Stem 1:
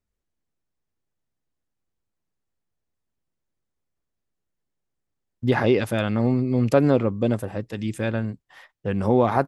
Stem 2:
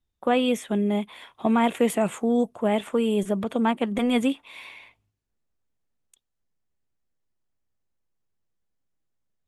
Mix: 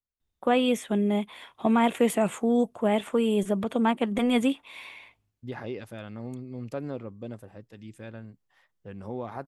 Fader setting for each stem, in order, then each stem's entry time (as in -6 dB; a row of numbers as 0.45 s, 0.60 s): -16.5 dB, -1.0 dB; 0.00 s, 0.20 s